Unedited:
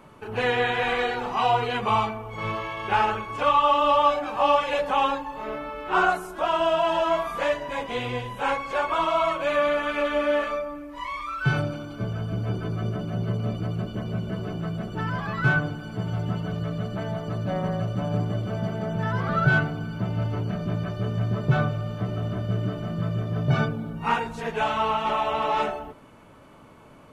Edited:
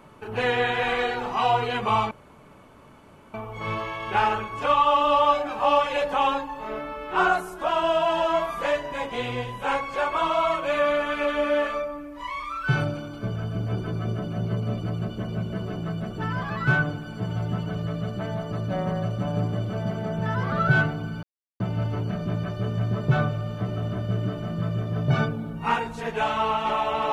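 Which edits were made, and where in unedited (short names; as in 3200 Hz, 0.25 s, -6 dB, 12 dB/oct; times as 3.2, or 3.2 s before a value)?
2.11 insert room tone 1.23 s
20 insert silence 0.37 s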